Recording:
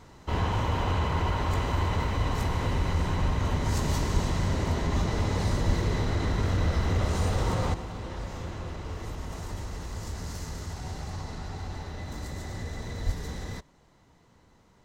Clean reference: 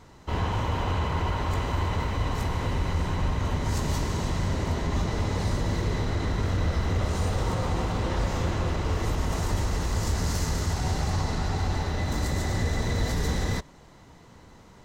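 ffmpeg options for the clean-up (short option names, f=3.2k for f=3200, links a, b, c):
-filter_complex "[0:a]asplit=3[a][b][c];[a]afade=t=out:st=4.13:d=0.02[d];[b]highpass=f=140:w=0.5412,highpass=f=140:w=1.3066,afade=t=in:st=4.13:d=0.02,afade=t=out:st=4.25:d=0.02[e];[c]afade=t=in:st=4.25:d=0.02[f];[d][e][f]amix=inputs=3:normalize=0,asplit=3[g][h][i];[g]afade=t=out:st=5.66:d=0.02[j];[h]highpass=f=140:w=0.5412,highpass=f=140:w=1.3066,afade=t=in:st=5.66:d=0.02,afade=t=out:st=5.78:d=0.02[k];[i]afade=t=in:st=5.78:d=0.02[l];[j][k][l]amix=inputs=3:normalize=0,asplit=3[m][n][o];[m]afade=t=out:st=13.05:d=0.02[p];[n]highpass=f=140:w=0.5412,highpass=f=140:w=1.3066,afade=t=in:st=13.05:d=0.02,afade=t=out:st=13.17:d=0.02[q];[o]afade=t=in:st=13.17:d=0.02[r];[p][q][r]amix=inputs=3:normalize=0,asetnsamples=n=441:p=0,asendcmd='7.74 volume volume 9.5dB',volume=0dB"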